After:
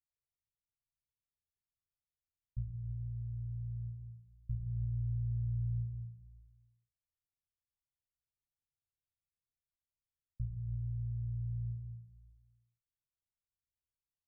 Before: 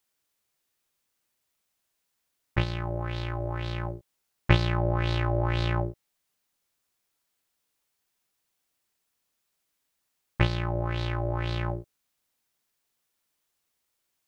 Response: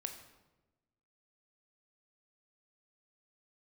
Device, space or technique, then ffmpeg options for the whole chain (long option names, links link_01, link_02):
club heard from the street: -filter_complex "[0:a]alimiter=limit=-16.5dB:level=0:latency=1:release=292,lowpass=frequency=130:width=0.5412,lowpass=frequency=130:width=1.3066[link_01];[1:a]atrim=start_sample=2205[link_02];[link_01][link_02]afir=irnorm=-1:irlink=0,volume=-3dB"